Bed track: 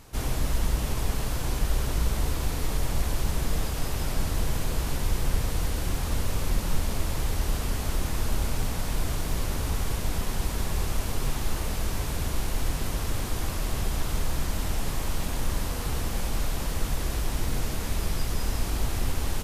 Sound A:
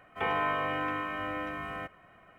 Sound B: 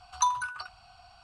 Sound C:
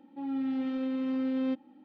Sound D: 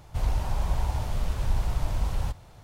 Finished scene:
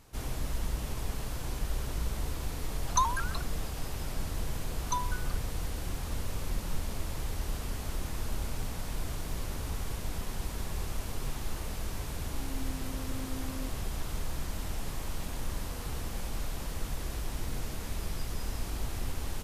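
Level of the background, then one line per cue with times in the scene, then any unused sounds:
bed track -7.5 dB
2.75 s: add B -1.5 dB + vibrato with a chosen wave saw up 6.7 Hz, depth 160 cents
4.70 s: add B -7.5 dB + local Wiener filter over 9 samples
12.14 s: add C -12.5 dB
not used: A, D

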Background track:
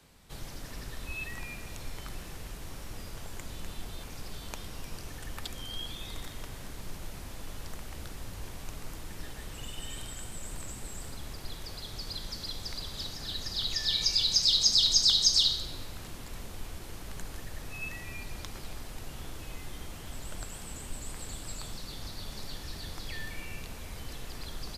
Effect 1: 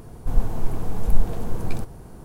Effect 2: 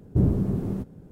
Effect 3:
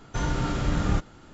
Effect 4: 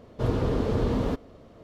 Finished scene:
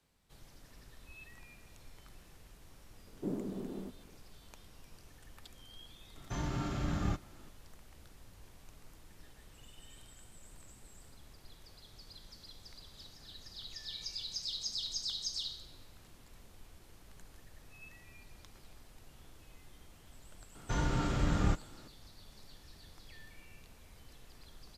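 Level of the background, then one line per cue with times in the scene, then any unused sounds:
background track -15 dB
3.07 s: add 2 -9.5 dB + high-pass 220 Hz 24 dB/octave
6.16 s: add 3 -8 dB + comb of notches 480 Hz
20.55 s: add 3 -5.5 dB
not used: 1, 4

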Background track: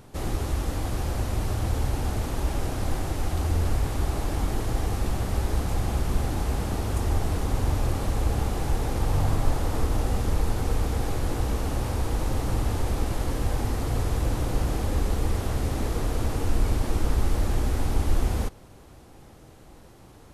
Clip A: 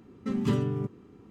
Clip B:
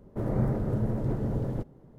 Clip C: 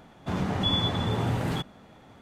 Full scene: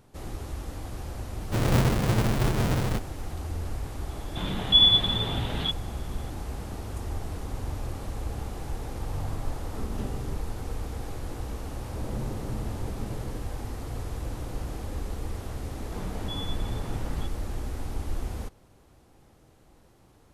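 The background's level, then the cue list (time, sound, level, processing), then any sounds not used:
background track -8.5 dB
1.36 s: add B + square wave that keeps the level
4.09 s: add C -5 dB + resonant low-pass 3.5 kHz, resonance Q 6.2
9.51 s: add A -11.5 dB
11.77 s: add B -8.5 dB
15.65 s: add C -11 dB

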